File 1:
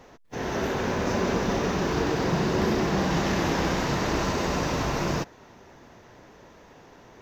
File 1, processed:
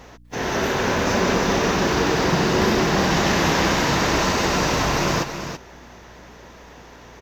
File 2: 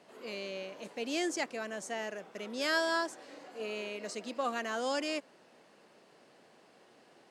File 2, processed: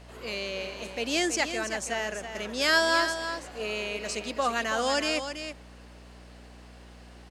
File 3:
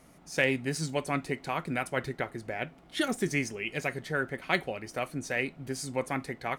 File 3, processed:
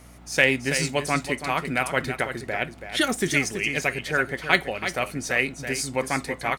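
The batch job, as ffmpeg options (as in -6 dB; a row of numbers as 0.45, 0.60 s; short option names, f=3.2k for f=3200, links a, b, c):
-af "tiltshelf=f=900:g=-3,aeval=exprs='val(0)+0.00178*(sin(2*PI*60*n/s)+sin(2*PI*2*60*n/s)/2+sin(2*PI*3*60*n/s)/3+sin(2*PI*4*60*n/s)/4+sin(2*PI*5*60*n/s)/5)':c=same,aecho=1:1:329:0.355,volume=6.5dB"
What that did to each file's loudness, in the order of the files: +6.5, +7.5, +7.5 LU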